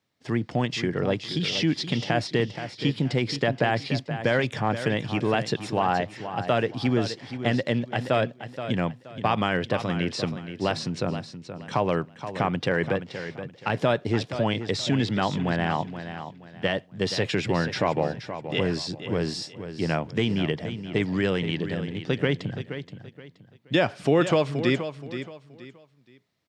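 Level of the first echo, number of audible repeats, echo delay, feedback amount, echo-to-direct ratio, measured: -10.5 dB, 3, 475 ms, 29%, -10.0 dB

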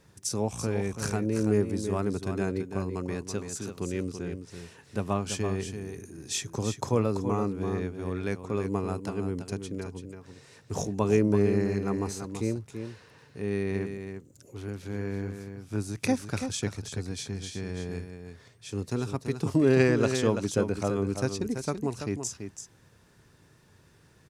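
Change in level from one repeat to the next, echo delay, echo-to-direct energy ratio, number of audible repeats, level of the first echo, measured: no regular repeats, 334 ms, -8.0 dB, 1, -8.0 dB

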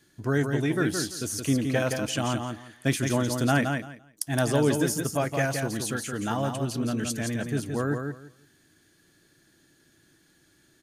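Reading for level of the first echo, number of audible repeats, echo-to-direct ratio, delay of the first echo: -5.5 dB, 3, -5.5 dB, 170 ms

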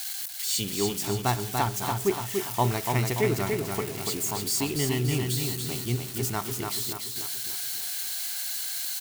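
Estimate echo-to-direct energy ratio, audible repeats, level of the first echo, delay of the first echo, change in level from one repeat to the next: -3.5 dB, 5, -4.5 dB, 289 ms, -6.0 dB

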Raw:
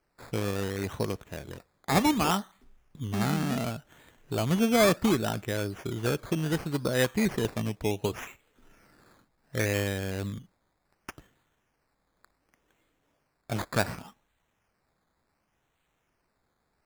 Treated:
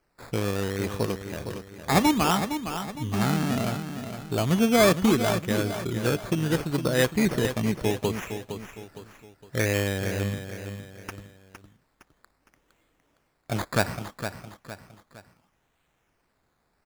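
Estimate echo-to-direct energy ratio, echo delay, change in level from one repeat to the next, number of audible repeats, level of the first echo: -8.5 dB, 461 ms, -8.0 dB, 3, -9.0 dB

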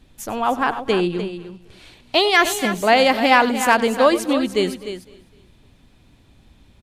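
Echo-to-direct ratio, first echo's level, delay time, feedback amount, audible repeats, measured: -9.0 dB, -17.0 dB, 96 ms, no regular repeats, 5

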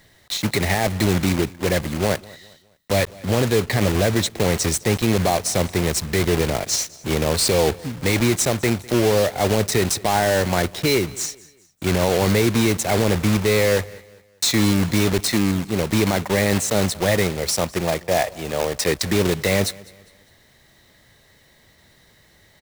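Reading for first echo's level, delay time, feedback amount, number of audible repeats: -22.5 dB, 203 ms, 39%, 2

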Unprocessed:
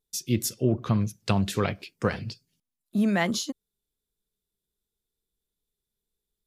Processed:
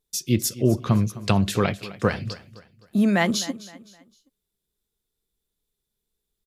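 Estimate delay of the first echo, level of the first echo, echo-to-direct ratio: 258 ms, -17.5 dB, -17.0 dB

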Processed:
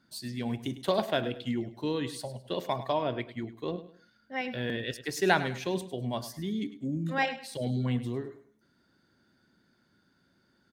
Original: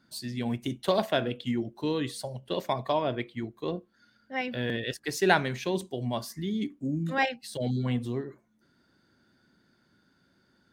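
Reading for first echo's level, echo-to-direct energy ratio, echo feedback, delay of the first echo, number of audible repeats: -14.0 dB, -13.5 dB, 30%, 103 ms, 3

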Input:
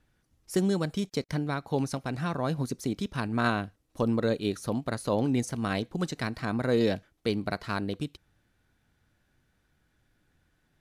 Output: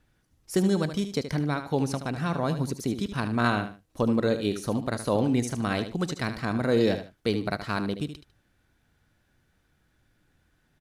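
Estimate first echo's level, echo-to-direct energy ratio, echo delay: -10.0 dB, -9.5 dB, 75 ms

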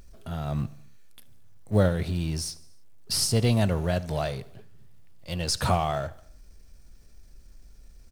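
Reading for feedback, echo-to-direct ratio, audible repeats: 58%, -20.0 dB, 3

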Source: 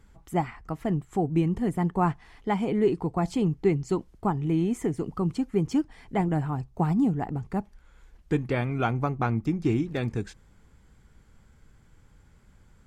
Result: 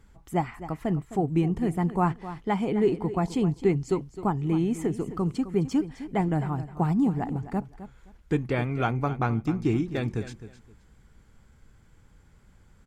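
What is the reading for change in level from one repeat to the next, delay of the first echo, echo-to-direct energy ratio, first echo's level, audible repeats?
-13.5 dB, 260 ms, -13.5 dB, -13.5 dB, 2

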